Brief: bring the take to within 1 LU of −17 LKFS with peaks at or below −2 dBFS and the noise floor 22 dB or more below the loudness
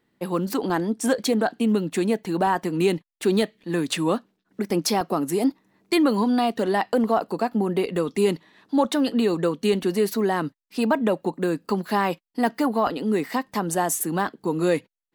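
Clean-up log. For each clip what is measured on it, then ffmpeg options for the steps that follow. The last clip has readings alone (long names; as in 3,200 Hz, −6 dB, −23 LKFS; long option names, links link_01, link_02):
integrated loudness −24.0 LKFS; sample peak −8.0 dBFS; target loudness −17.0 LKFS
→ -af "volume=7dB,alimiter=limit=-2dB:level=0:latency=1"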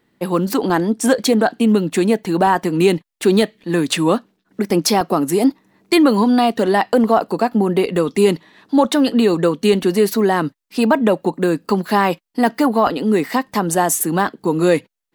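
integrated loudness −17.0 LKFS; sample peak −2.0 dBFS; background noise floor −69 dBFS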